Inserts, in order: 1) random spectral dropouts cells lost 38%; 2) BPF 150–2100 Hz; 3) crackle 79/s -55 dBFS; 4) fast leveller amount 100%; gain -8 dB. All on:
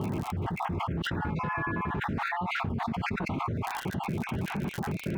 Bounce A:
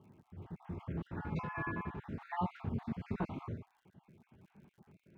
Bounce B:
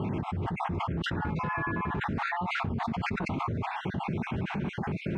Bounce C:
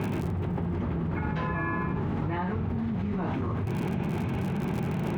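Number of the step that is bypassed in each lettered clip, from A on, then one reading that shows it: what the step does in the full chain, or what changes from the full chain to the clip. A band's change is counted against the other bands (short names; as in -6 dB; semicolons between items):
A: 4, crest factor change +3.5 dB; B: 3, crest factor change -3.0 dB; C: 1, 4 kHz band -11.0 dB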